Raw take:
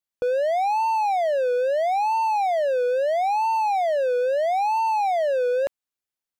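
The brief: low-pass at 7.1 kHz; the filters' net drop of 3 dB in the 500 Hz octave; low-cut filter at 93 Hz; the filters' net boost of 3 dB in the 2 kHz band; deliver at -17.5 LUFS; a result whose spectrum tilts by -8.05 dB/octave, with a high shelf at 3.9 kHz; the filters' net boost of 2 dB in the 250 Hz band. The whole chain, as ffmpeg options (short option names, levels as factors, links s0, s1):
-af "highpass=93,lowpass=7100,equalizer=f=250:t=o:g=5,equalizer=f=500:t=o:g=-4.5,equalizer=f=2000:t=o:g=6.5,highshelf=f=3900:g=-9,volume=2.11"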